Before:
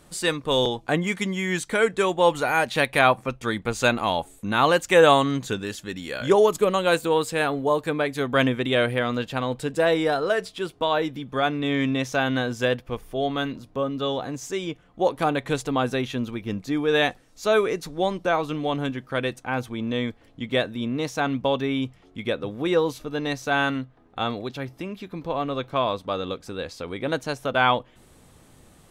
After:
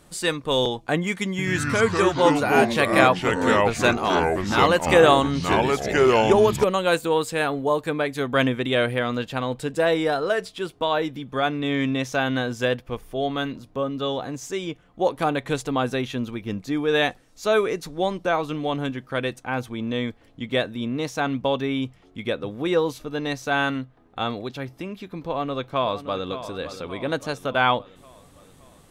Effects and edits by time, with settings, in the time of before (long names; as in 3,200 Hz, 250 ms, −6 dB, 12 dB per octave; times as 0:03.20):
0:01.30–0:06.64: delay with pitch and tempo change per echo 84 ms, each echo −4 semitones, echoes 3
0:25.21–0:26.30: delay throw 570 ms, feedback 55%, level −12 dB